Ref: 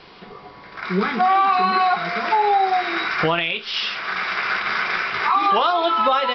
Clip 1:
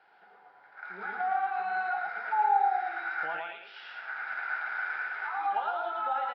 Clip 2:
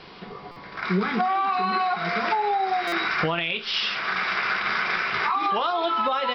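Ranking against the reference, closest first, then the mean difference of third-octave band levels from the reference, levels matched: 2, 1; 2.5 dB, 8.0 dB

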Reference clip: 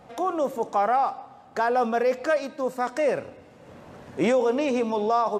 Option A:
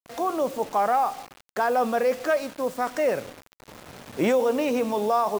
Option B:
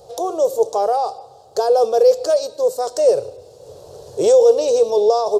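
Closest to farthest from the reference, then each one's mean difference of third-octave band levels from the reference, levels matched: A, B; 5.0 dB, 7.5 dB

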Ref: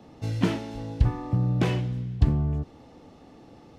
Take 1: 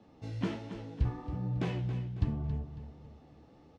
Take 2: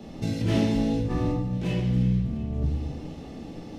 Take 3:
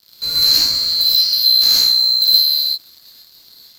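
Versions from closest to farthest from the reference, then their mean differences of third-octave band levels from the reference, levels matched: 1, 2, 3; 2.5 dB, 6.0 dB, 17.0 dB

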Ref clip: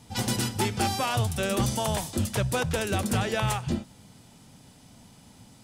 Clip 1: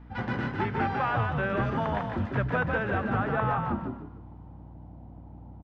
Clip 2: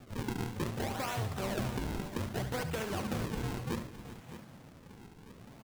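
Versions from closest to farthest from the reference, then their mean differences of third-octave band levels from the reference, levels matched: 2, 1; 6.5 dB, 11.5 dB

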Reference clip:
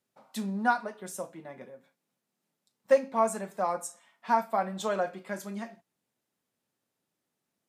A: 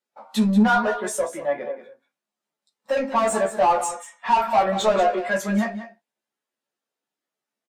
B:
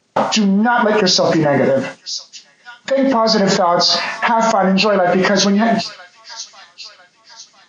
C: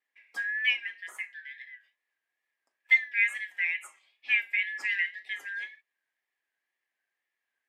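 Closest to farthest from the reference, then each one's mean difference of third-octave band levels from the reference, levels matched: A, B, C; 5.5 dB, 10.0 dB, 14.5 dB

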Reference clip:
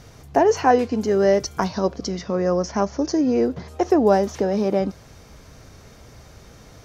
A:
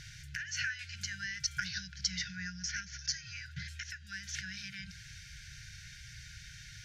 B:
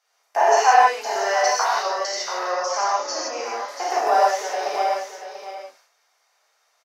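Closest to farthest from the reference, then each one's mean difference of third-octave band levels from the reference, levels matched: B, A; 13.0 dB, 18.0 dB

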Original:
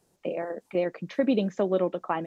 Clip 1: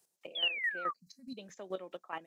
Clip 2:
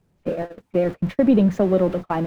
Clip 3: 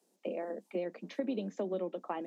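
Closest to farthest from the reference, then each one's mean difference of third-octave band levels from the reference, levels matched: 3, 2, 1; 3.0 dB, 5.5 dB, 7.5 dB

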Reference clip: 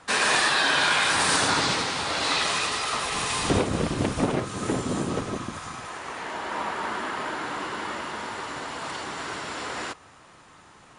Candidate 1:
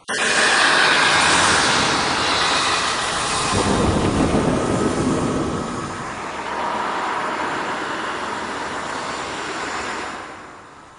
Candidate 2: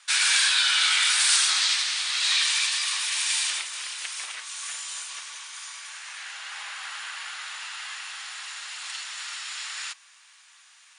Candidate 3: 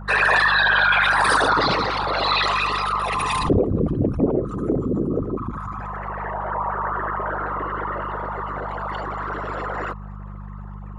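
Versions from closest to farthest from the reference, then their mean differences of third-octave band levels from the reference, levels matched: 1, 3, 2; 3.0 dB, 10.0 dB, 16.0 dB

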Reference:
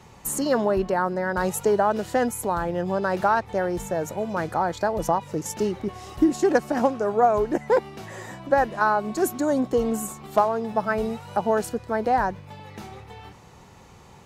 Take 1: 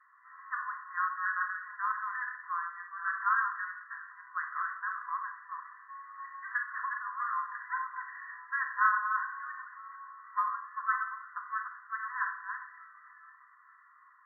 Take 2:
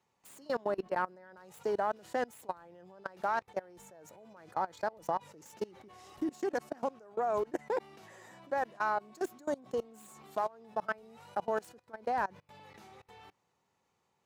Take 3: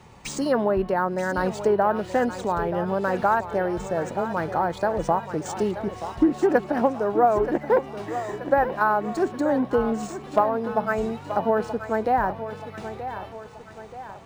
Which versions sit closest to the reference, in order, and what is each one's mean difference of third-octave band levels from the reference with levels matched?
3, 2, 1; 3.5 dB, 7.0 dB, 23.5 dB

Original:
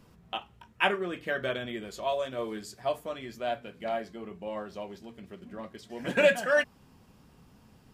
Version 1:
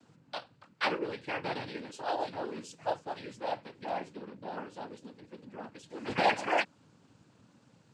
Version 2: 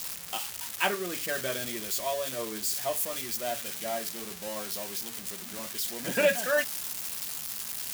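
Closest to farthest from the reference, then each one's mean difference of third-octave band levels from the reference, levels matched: 1, 2; 5.0 dB, 11.5 dB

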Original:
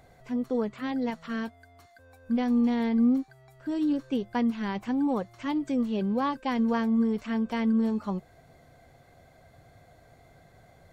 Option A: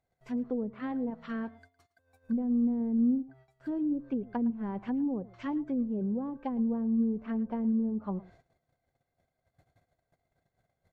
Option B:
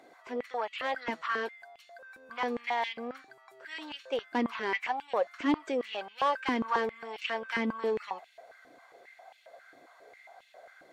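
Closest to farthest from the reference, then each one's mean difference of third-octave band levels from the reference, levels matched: A, B; 5.5 dB, 8.0 dB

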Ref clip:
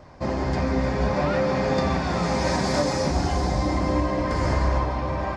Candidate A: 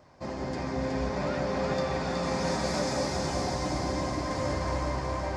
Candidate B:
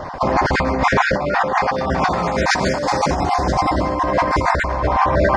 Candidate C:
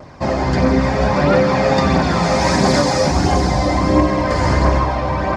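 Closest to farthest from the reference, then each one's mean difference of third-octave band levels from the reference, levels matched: C, A, B; 1.5 dB, 3.0 dB, 5.5 dB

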